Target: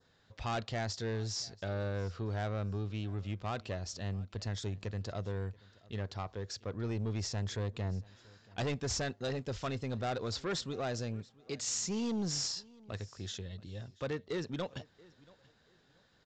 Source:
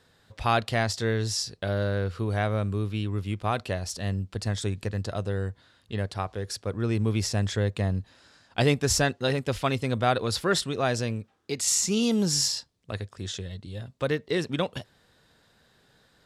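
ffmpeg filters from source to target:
ffmpeg -i in.wav -af "adynamicequalizer=threshold=0.00631:dfrequency=2500:dqfactor=1.3:tfrequency=2500:tqfactor=1.3:attack=5:release=100:ratio=0.375:range=2.5:mode=cutabove:tftype=bell,aresample=16000,asoftclip=type=tanh:threshold=-23.5dB,aresample=44100,aecho=1:1:681|1362:0.0668|0.0167,volume=-6.5dB" out.wav

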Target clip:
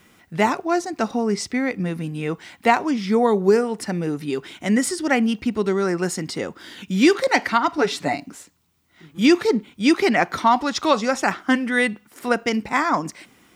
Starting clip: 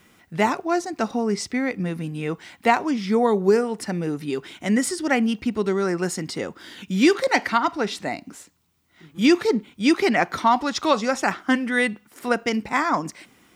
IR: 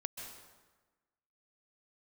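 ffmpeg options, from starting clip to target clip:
-filter_complex "[0:a]asettb=1/sr,asplit=3[link_01][link_02][link_03];[link_01]atrim=end=7.774[link_04];[link_02]atrim=start=7.77:end=8.26,asetpts=PTS-STARTPTS,afade=type=in:duration=0.004:curve=qsin,afade=type=out:start_time=0.486:duration=0.004:curve=qsin,aecho=1:1:7:0.95,atrim=end_sample=21609[link_05];[link_03]atrim=start=8.256[link_06];[link_04][link_05]acrossfade=duration=0.004:curve1=hsin:curve2=qsin[link_07];[link_07][link_06]acrossfade=duration=0.004:curve1=qsin:curve2=hsin,volume=1.5dB"

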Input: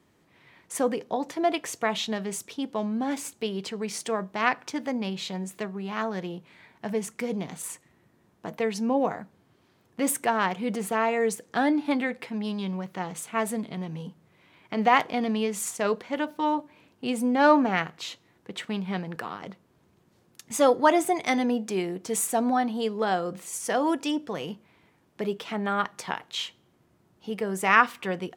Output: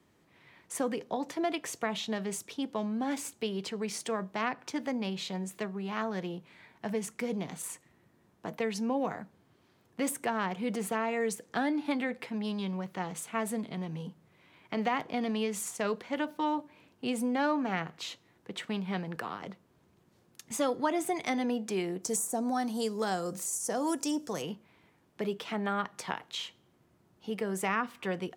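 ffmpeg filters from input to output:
ffmpeg -i in.wav -filter_complex "[0:a]asplit=3[link_01][link_02][link_03];[link_01]afade=type=out:start_time=22.02:duration=0.02[link_04];[link_02]highshelf=frequency=4500:width_type=q:width=1.5:gain=12,afade=type=in:start_time=22.02:duration=0.02,afade=type=out:start_time=24.41:duration=0.02[link_05];[link_03]afade=type=in:start_time=24.41:duration=0.02[link_06];[link_04][link_05][link_06]amix=inputs=3:normalize=0,acrossover=split=340|1100[link_07][link_08][link_09];[link_07]acompressor=threshold=-30dB:ratio=4[link_10];[link_08]acompressor=threshold=-31dB:ratio=4[link_11];[link_09]acompressor=threshold=-32dB:ratio=4[link_12];[link_10][link_11][link_12]amix=inputs=3:normalize=0,volume=-2.5dB" out.wav

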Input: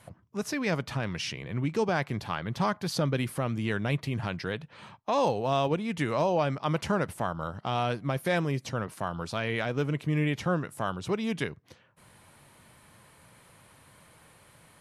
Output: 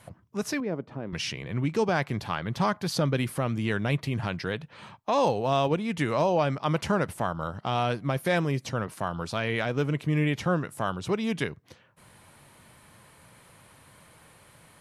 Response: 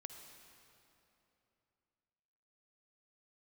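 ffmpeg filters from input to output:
-filter_complex "[0:a]asettb=1/sr,asplit=3[link_01][link_02][link_03];[link_01]atrim=end=0.604[link_04];[link_02]atrim=start=0.6:end=1.13,asetpts=PTS-STARTPTS,afade=type=in:duration=0.004:curve=qsin,afade=type=out:start_time=0.526:duration=0.004:curve=qsin,bandpass=frequency=340:width_type=q:width=1.2:csg=0[link_05];[link_03]atrim=start=1.126[link_06];[link_04][link_05]acrossfade=duration=0.004:curve1=hsin:curve2=qsin[link_07];[link_07][link_06]acrossfade=duration=0.004:curve1=qsin:curve2=hsin,volume=2dB"

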